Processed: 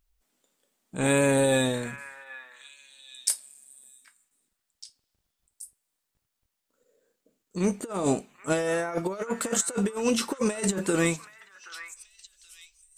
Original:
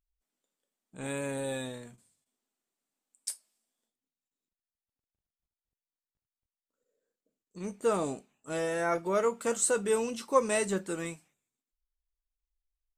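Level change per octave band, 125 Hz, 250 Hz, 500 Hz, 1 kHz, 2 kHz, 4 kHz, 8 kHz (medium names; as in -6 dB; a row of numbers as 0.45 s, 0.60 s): +11.0 dB, +9.5 dB, +3.0 dB, +0.5 dB, +6.5 dB, +9.5 dB, +5.5 dB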